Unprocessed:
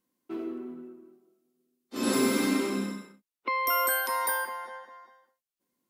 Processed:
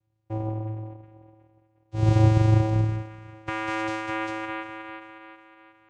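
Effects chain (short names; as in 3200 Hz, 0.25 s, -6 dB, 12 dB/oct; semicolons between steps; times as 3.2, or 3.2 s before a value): band-limited delay 0.363 s, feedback 46%, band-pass 1000 Hz, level -9 dB; vocoder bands 4, square 109 Hz; gain +6 dB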